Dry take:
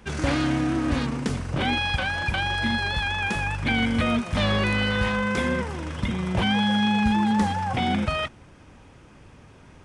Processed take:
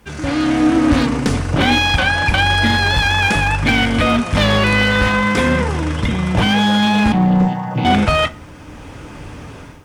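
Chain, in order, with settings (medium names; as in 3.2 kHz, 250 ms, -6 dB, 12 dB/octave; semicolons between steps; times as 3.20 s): 7.12–7.85 s: vocoder on a held chord major triad, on B2; level rider gain up to 16 dB; word length cut 10-bit, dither none; one-sided clip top -11.5 dBFS; FDN reverb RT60 0.39 s, low-frequency decay 1×, high-frequency decay 0.65×, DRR 9 dB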